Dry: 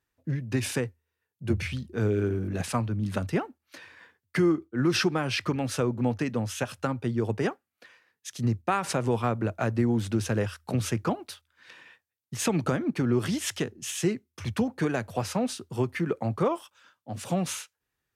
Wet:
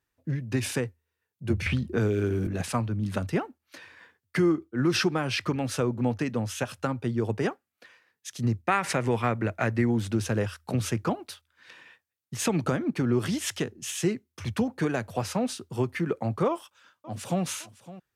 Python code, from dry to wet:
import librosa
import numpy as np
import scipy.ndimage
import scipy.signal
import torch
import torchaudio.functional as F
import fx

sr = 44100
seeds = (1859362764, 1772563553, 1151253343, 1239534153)

y = fx.band_squash(x, sr, depth_pct=100, at=(1.66, 2.47))
y = fx.peak_eq(y, sr, hz=2000.0, db=9.5, octaves=0.63, at=(8.65, 9.91))
y = fx.echo_throw(y, sr, start_s=16.48, length_s=0.95, ms=560, feedback_pct=50, wet_db=-17.0)